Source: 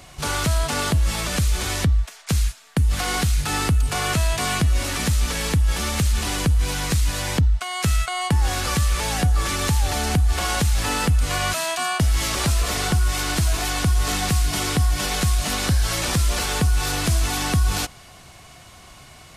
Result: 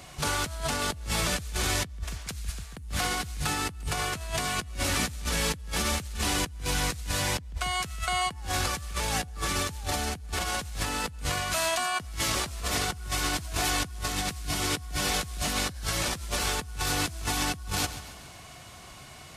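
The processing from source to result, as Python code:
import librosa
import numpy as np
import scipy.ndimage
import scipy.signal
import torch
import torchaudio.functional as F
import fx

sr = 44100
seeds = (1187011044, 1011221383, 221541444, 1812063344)

y = fx.highpass(x, sr, hz=50.0, slope=6)
y = fx.echo_feedback(y, sr, ms=139, feedback_pct=50, wet_db=-15.0)
y = fx.over_compress(y, sr, threshold_db=-25.0, ratio=-0.5)
y = y * librosa.db_to_amplitude(-5.0)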